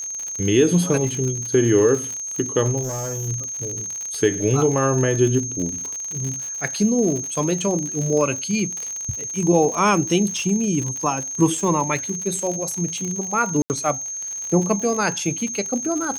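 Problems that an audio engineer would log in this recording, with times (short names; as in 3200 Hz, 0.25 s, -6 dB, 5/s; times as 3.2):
crackle 60/s -25 dBFS
tone 6400 Hz -27 dBFS
2.82–3.29 clipped -23.5 dBFS
13.62–13.7 gap 79 ms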